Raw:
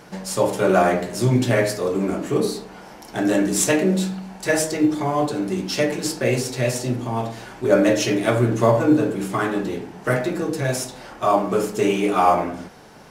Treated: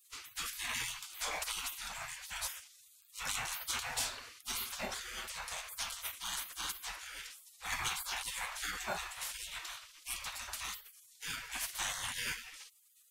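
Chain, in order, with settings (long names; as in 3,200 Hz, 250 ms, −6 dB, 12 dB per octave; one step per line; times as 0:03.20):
gate on every frequency bin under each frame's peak −30 dB weak
level +1 dB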